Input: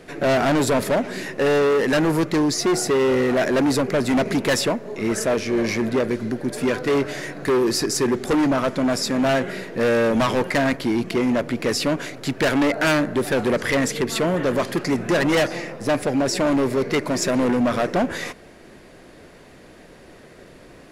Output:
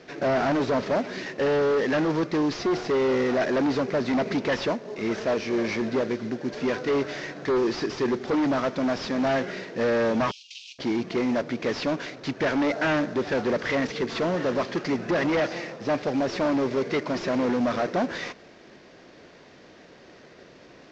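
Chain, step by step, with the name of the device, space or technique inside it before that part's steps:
early wireless headset (high-pass filter 160 Hz 6 dB per octave; variable-slope delta modulation 32 kbit/s)
0:10.31–0:10.79: Butterworth high-pass 2,600 Hz 96 dB per octave
level −3 dB

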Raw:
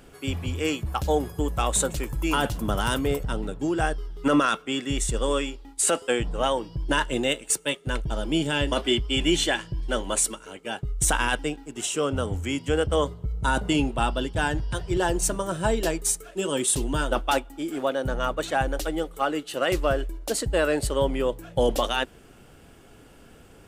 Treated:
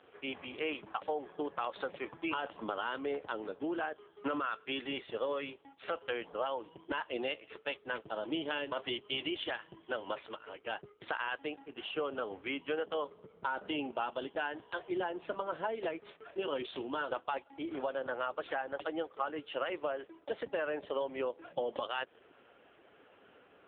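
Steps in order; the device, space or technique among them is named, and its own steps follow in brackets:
0:04.54–0:05.34: dynamic equaliser 610 Hz, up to +4 dB, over −40 dBFS, Q 4
voicemail (band-pass filter 440–3,300 Hz; downward compressor 8 to 1, threshold −29 dBFS, peak gain reduction 10 dB; level −1.5 dB; AMR narrowband 5.9 kbit/s 8,000 Hz)

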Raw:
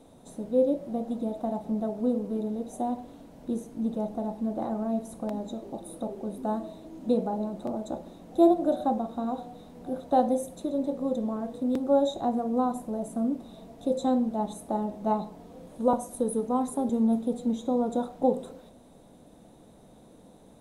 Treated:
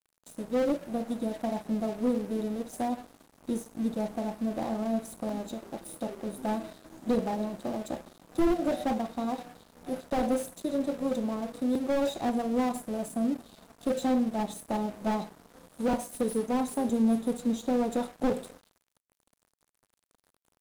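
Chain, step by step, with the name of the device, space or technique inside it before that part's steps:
early transistor amplifier (dead-zone distortion −46.5 dBFS; slew-rate limiting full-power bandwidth 30 Hz)
high-shelf EQ 3,600 Hz +10.5 dB

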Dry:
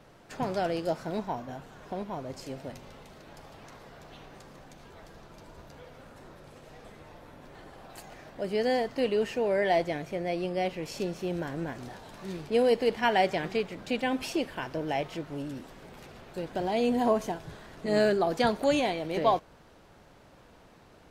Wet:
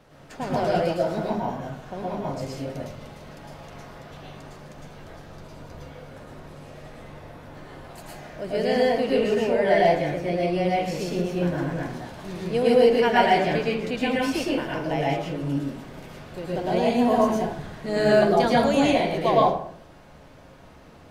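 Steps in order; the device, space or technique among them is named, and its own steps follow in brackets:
bathroom (convolution reverb RT60 0.60 s, pre-delay 102 ms, DRR −5 dB)

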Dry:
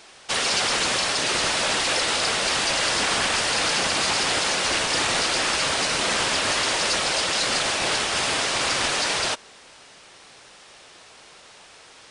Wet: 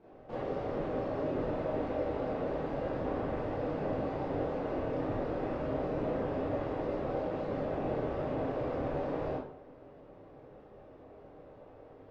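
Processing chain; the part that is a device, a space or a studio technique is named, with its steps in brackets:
television next door (downward compressor, threshold −26 dBFS, peak gain reduction 7 dB; low-pass filter 430 Hz 12 dB per octave; convolution reverb RT60 0.60 s, pre-delay 23 ms, DRR −8.5 dB)
level −2.5 dB

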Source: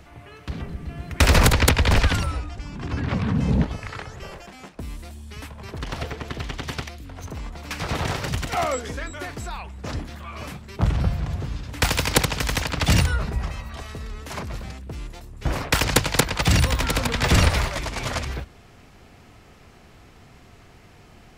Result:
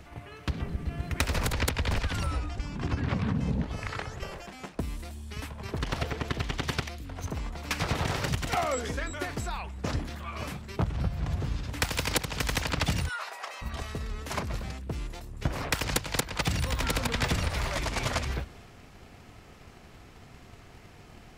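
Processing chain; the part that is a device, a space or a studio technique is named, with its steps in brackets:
0:13.08–0:13.61: high-pass filter 940 Hz → 440 Hz 24 dB per octave
drum-bus smash (transient designer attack +7 dB, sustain +3 dB; downward compressor 12 to 1, threshold −21 dBFS, peak gain reduction 16 dB; soft clipping −11 dBFS, distortion −25 dB)
level −2.5 dB

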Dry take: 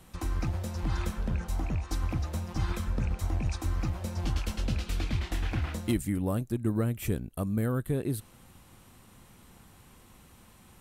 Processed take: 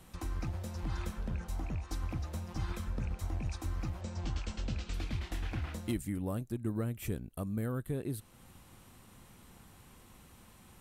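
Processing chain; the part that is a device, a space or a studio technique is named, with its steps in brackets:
0:04.01–0:04.94: Butterworth low-pass 8,300 Hz 96 dB per octave
parallel compression (in parallel at −0.5 dB: downward compressor, threshold −44 dBFS, peak gain reduction 19.5 dB)
on the sum: level −7.5 dB

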